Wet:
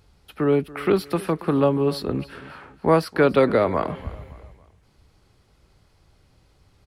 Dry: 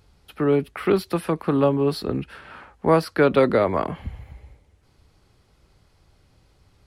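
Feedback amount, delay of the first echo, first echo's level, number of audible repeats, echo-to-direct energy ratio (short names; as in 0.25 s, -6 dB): 40%, 0.282 s, -19.0 dB, 3, -18.5 dB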